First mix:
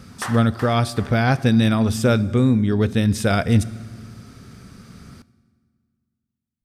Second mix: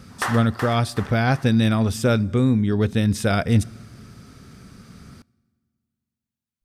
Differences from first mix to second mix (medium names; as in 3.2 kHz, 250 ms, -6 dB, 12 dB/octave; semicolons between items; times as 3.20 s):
speech: send -8.5 dB; background +4.5 dB